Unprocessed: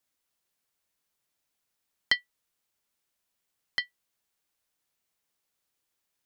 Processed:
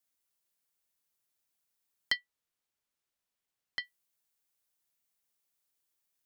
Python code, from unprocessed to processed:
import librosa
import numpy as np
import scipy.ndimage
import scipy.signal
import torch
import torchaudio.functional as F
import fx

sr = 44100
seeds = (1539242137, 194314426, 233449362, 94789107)

y = fx.high_shelf(x, sr, hz=6700.0, db=fx.steps((0.0, 7.5), (2.16, -3.0), (3.83, 8.5)))
y = F.gain(torch.from_numpy(y), -6.5).numpy()